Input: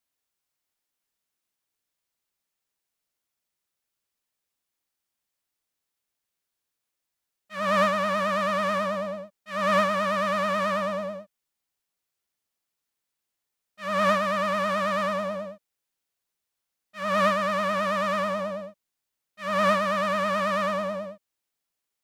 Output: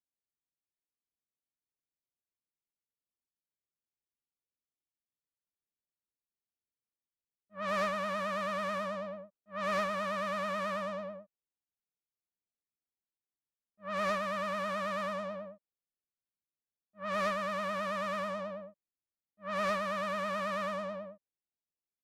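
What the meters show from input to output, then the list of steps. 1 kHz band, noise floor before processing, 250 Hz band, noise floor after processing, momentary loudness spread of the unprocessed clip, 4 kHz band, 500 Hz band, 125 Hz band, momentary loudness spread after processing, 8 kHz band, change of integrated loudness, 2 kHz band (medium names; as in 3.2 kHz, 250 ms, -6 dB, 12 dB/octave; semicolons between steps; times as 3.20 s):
-9.5 dB, -84 dBFS, -10.0 dB, under -85 dBFS, 13 LU, -9.5 dB, -9.5 dB, -10.0 dB, 13 LU, -9.0 dB, -9.5 dB, -9.0 dB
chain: one-sided clip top -24 dBFS; level-controlled noise filter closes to 420 Hz, open at -22 dBFS; trim -9 dB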